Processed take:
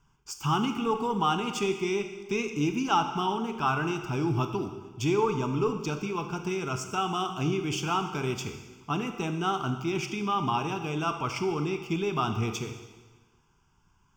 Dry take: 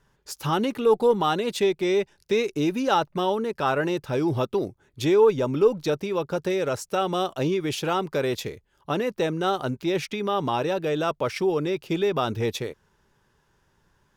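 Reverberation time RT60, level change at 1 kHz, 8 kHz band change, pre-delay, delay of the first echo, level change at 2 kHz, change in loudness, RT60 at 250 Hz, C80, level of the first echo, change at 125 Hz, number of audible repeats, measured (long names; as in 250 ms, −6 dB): 1.3 s, −1.5 dB, 0.0 dB, 19 ms, no echo audible, −2.5 dB, −4.5 dB, 1.3 s, 9.5 dB, no echo audible, +0.5 dB, no echo audible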